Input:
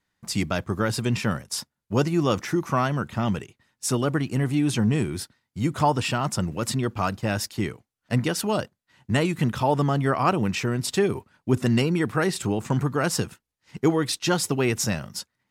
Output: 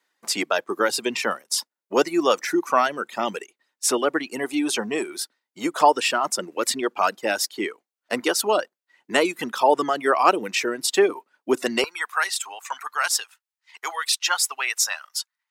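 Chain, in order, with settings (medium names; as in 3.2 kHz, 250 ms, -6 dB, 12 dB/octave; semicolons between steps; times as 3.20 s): reverb removal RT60 1.2 s; high-pass 330 Hz 24 dB/octave, from 11.84 s 930 Hz; trim +6 dB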